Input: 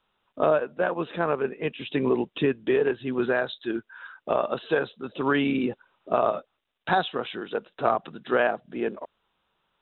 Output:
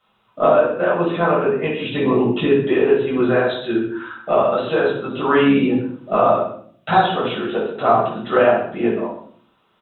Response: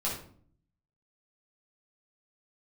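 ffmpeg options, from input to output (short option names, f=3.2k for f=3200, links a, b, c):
-filter_complex "[0:a]highpass=68,asplit=2[a][b];[b]acompressor=threshold=-32dB:ratio=6,volume=-2dB[c];[a][c]amix=inputs=2:normalize=0,aecho=1:1:129:0.2[d];[1:a]atrim=start_sample=2205[e];[d][e]afir=irnorm=-1:irlink=0"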